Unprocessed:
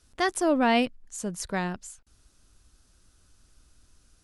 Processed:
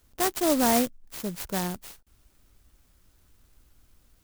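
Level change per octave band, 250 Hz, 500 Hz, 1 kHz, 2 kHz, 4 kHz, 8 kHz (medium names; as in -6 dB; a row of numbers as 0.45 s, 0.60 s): 0.0 dB, -0.5 dB, -1.5 dB, -5.0 dB, +0.5 dB, +5.0 dB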